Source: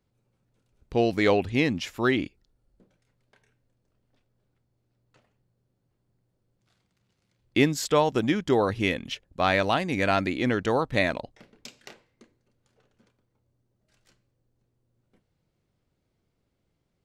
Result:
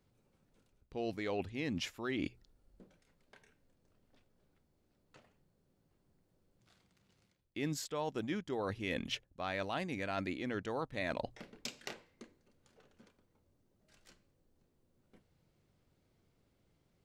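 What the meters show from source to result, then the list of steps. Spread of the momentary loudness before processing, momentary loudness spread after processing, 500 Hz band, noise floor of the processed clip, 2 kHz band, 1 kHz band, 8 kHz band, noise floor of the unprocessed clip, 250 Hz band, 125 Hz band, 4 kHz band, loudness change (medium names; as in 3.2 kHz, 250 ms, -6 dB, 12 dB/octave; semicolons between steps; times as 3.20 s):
7 LU, 9 LU, -14.5 dB, -77 dBFS, -14.0 dB, -14.5 dB, -10.0 dB, -76 dBFS, -13.5 dB, -13.5 dB, -11.0 dB, -14.5 dB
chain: reverse; compression 10:1, threshold -36 dBFS, peak gain reduction 21 dB; reverse; hum notches 60/120 Hz; trim +1.5 dB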